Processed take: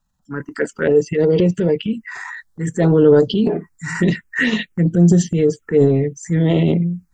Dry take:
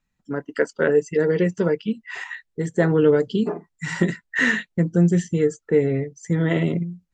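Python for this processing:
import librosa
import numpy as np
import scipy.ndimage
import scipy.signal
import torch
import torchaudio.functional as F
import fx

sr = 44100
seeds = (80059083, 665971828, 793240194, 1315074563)

y = fx.notch(x, sr, hz=2000.0, q=27.0)
y = fx.transient(y, sr, attack_db=-4, sustain_db=8)
y = fx.env_phaser(y, sr, low_hz=380.0, high_hz=2300.0, full_db=-14.0)
y = F.gain(torch.from_numpy(y), 6.0).numpy()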